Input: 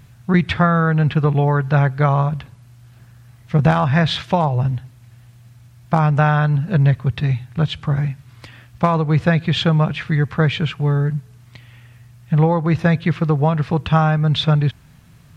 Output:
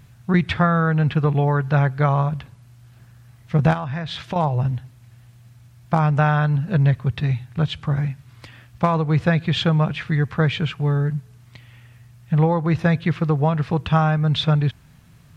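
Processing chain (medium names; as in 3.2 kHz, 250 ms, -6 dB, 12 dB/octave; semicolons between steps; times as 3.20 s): 3.73–4.36 s: compression 10:1, threshold -22 dBFS, peak gain reduction 11 dB; trim -2.5 dB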